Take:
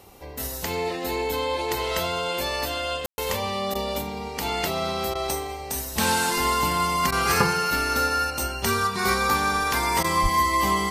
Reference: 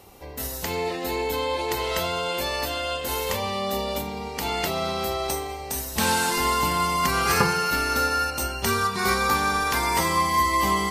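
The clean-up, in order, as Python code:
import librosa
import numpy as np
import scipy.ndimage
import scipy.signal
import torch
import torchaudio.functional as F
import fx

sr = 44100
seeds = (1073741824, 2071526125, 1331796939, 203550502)

y = fx.highpass(x, sr, hz=140.0, slope=24, at=(10.22, 10.34), fade=0.02)
y = fx.fix_ambience(y, sr, seeds[0], print_start_s=0.0, print_end_s=0.5, start_s=3.06, end_s=3.18)
y = fx.fix_interpolate(y, sr, at_s=(3.74, 5.14, 7.11, 10.03), length_ms=11.0)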